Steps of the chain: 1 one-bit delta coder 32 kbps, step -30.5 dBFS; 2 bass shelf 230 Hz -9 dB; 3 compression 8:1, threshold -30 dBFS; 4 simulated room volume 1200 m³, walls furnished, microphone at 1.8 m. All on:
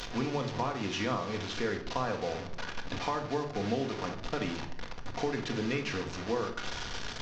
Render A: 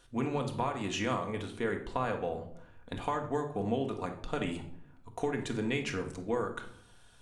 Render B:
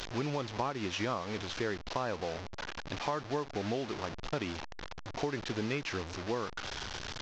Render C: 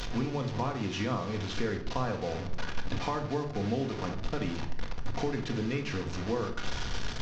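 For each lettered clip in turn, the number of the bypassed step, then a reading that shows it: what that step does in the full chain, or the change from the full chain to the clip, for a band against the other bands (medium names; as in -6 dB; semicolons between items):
1, 4 kHz band -5.0 dB; 4, echo-to-direct -3.0 dB to none; 2, 125 Hz band +6.0 dB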